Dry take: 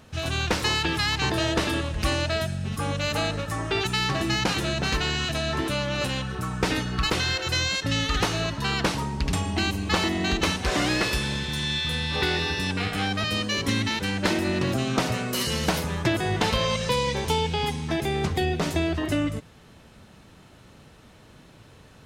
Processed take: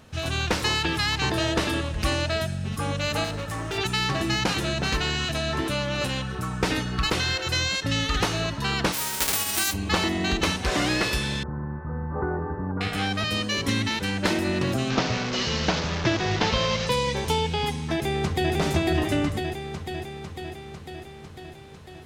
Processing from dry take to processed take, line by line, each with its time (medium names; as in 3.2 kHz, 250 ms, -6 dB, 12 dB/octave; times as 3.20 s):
3.24–3.78 s: hard clipper -27 dBFS
8.92–9.72 s: formants flattened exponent 0.1
11.43–12.81 s: steep low-pass 1.4 kHz 48 dB/octave
14.90–16.87 s: one-bit delta coder 32 kbps, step -23 dBFS
17.94–18.53 s: echo throw 500 ms, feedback 70%, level -2 dB